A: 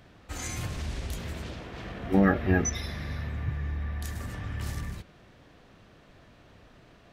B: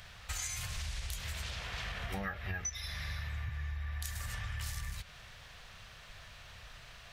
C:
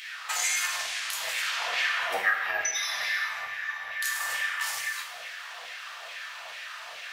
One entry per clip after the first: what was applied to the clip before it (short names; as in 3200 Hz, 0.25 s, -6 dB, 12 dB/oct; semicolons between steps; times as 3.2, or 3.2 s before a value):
passive tone stack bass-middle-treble 10-0-10; compressor 8:1, threshold -48 dBFS, peak gain reduction 19.5 dB; gain +12 dB
LFO high-pass saw down 2.3 Hz 560–2400 Hz; reverb, pre-delay 3 ms, DRR -1 dB; gain +7.5 dB